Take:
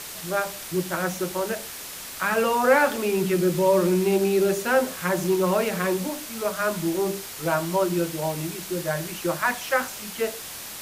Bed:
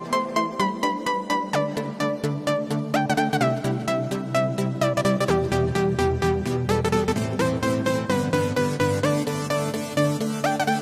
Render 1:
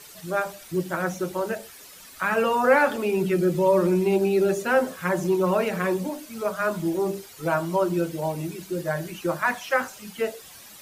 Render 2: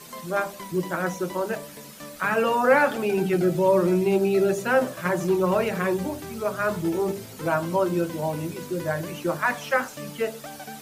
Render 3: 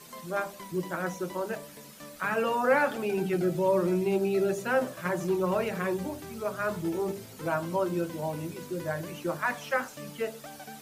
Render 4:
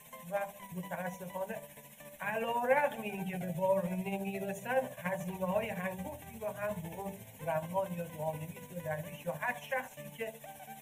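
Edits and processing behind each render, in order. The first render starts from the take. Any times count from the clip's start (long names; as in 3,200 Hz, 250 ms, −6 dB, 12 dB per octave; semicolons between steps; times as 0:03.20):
broadband denoise 12 dB, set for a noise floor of −37 dBFS
mix in bed −17 dB
level −5.5 dB
amplitude tremolo 14 Hz, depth 49%; phaser with its sweep stopped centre 1,300 Hz, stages 6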